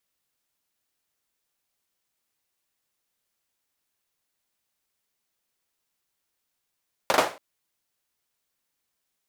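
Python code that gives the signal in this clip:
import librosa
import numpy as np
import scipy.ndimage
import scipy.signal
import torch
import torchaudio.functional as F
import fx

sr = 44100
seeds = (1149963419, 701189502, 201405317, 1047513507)

y = fx.drum_clap(sr, seeds[0], length_s=0.28, bursts=3, spacing_ms=40, hz=690.0, decay_s=0.33)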